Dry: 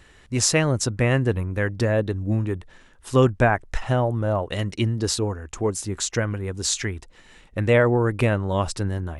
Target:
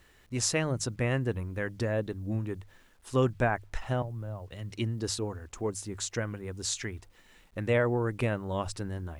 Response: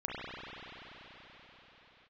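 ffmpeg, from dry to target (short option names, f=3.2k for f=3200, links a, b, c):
-filter_complex "[0:a]asettb=1/sr,asplit=3[a][b][c];[a]atrim=end=4.024[d];[b]atrim=start=4.02:end=4.71,asetpts=PTS-STARTPTS,afade=t=in:d=0.004:c=qsin,afade=t=out:st=0.686:d=0.004:c=qsin,acrossover=split=130[e][f];[f]acompressor=threshold=-42dB:ratio=2[g];[e][g]amix=inputs=2:normalize=0[h];[c]atrim=start=4.706[i];[d][h]acrossfade=d=0.004:c1=hsin:c2=qsin[j];[j][i]acrossfade=d=0.004:c1=qsin:c2=hsin,bandreject=f=50:t=h:w=6,bandreject=f=100:t=h:w=6,bandreject=f=150:t=h:w=6,acrusher=bits=9:mix=0:aa=0.000001,volume=-8.5dB"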